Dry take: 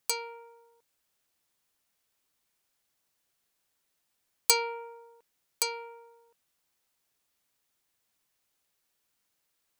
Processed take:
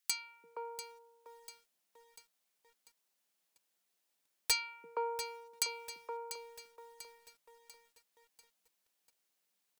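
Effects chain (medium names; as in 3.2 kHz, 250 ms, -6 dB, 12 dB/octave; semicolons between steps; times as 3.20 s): Chebyshev high-pass 160 Hz, order 8; three bands offset in time highs, lows, mids 340/470 ms, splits 270/1300 Hz; wavefolder -18.5 dBFS; bit-crushed delay 693 ms, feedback 55%, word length 9-bit, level -11.5 dB; trim -2.5 dB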